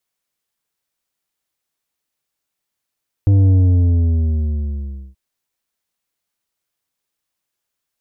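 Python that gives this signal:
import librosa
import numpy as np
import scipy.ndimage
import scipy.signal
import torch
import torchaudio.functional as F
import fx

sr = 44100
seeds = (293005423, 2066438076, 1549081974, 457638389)

y = fx.sub_drop(sr, level_db=-9.5, start_hz=100.0, length_s=1.88, drive_db=8, fade_s=1.66, end_hz=65.0)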